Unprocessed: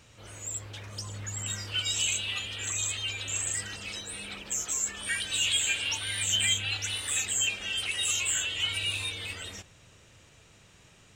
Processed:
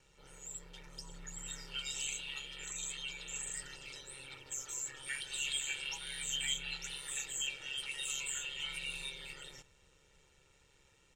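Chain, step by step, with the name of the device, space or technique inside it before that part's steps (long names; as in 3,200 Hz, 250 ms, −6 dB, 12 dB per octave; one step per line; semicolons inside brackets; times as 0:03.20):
ring-modulated robot voice (ring modulation 69 Hz; comb filter 2.2 ms, depth 67%)
level −9 dB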